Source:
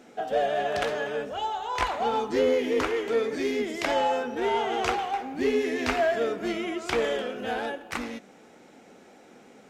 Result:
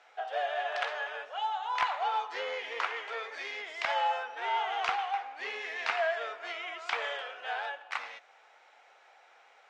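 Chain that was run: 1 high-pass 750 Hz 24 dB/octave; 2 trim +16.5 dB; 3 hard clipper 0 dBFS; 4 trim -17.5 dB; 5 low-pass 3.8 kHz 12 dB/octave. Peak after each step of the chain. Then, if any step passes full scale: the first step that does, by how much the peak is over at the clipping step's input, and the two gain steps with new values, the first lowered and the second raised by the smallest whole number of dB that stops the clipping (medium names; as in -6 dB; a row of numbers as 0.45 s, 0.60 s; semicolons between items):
-11.5 dBFS, +5.0 dBFS, 0.0 dBFS, -17.5 dBFS, -17.0 dBFS; step 2, 5.0 dB; step 2 +11.5 dB, step 4 -12.5 dB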